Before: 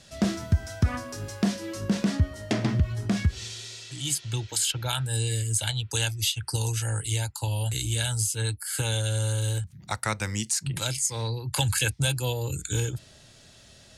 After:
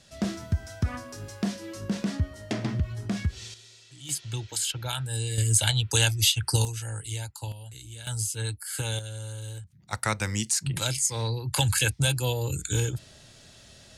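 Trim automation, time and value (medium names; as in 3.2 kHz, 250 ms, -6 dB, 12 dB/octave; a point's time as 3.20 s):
-4 dB
from 3.54 s -11.5 dB
from 4.09 s -3 dB
from 5.38 s +4.5 dB
from 6.65 s -6 dB
from 7.52 s -15 dB
from 8.07 s -3 dB
from 8.99 s -10.5 dB
from 9.93 s +1 dB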